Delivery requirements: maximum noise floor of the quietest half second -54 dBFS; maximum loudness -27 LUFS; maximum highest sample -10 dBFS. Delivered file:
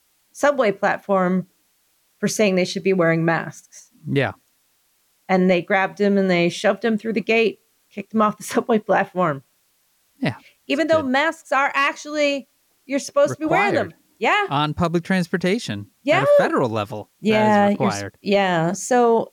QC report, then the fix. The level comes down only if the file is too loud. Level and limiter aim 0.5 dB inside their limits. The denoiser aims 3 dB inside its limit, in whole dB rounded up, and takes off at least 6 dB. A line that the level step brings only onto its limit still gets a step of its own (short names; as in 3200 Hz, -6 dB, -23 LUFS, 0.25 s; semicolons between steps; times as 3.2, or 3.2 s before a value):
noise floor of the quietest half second -64 dBFS: OK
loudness -20.0 LUFS: fail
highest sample -6.5 dBFS: fail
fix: gain -7.5 dB